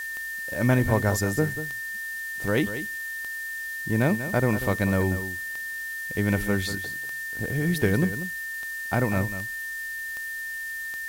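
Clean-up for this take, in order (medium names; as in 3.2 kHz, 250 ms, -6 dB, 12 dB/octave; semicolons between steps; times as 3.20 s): de-click; band-stop 1.8 kHz, Q 30; noise print and reduce 30 dB; inverse comb 190 ms -11.5 dB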